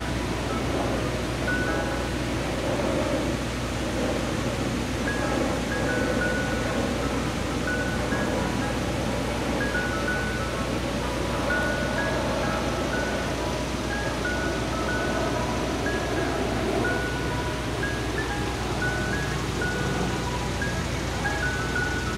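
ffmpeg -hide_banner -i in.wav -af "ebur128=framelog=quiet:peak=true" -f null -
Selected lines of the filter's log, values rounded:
Integrated loudness:
  I:         -26.6 LUFS
  Threshold: -36.6 LUFS
Loudness range:
  LRA:         1.0 LU
  Threshold: -46.6 LUFS
  LRA low:   -27.0 LUFS
  LRA high:  -26.0 LUFS
True peak:
  Peak:      -11.4 dBFS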